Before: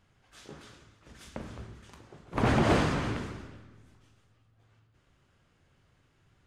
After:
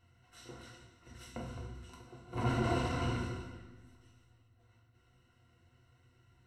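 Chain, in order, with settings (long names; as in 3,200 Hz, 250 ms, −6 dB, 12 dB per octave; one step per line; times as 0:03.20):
0:01.31–0:03.55: notch filter 1,900 Hz, Q 9.4
brickwall limiter −24 dBFS, peak gain reduction 9 dB
EQ curve with evenly spaced ripples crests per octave 2, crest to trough 14 dB
convolution reverb, pre-delay 3 ms, DRR 1.5 dB
level −6 dB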